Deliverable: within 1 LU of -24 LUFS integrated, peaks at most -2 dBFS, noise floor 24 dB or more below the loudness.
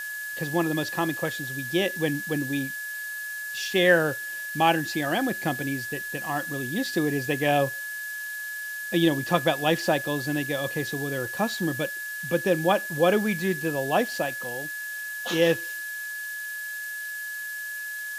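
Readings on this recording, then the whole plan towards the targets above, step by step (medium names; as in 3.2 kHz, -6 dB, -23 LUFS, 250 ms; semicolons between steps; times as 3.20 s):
steady tone 1.7 kHz; tone level -32 dBFS; noise floor -34 dBFS; noise floor target -51 dBFS; loudness -26.5 LUFS; peak level -6.5 dBFS; loudness target -24.0 LUFS
-> band-stop 1.7 kHz, Q 30; noise reduction 17 dB, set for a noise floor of -34 dBFS; trim +2.5 dB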